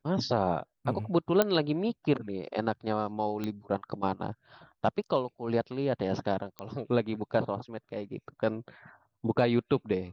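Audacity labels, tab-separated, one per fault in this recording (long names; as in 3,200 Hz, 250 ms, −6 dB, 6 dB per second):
1.420000	1.420000	click −9 dBFS
3.440000	3.440000	click −20 dBFS
6.590000	6.590000	click −22 dBFS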